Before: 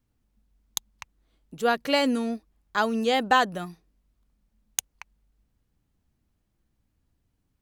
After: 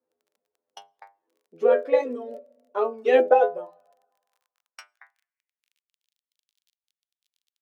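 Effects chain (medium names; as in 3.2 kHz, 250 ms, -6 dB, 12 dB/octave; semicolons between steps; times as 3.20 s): FFT filter 280 Hz 0 dB, 510 Hz +6 dB, 13 kHz -28 dB; reverb removal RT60 1.5 s; inharmonic resonator 82 Hz, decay 0.33 s, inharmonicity 0.002; on a send at -23 dB: reverberation RT60 1.6 s, pre-delay 3 ms; on the sum: crackle 24 per s -61 dBFS; bass shelf 81 Hz -10 dB; formant shift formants -3 st; high-pass sweep 450 Hz -> 3.5 kHz, 3.29–6.15 s; trim +8.5 dB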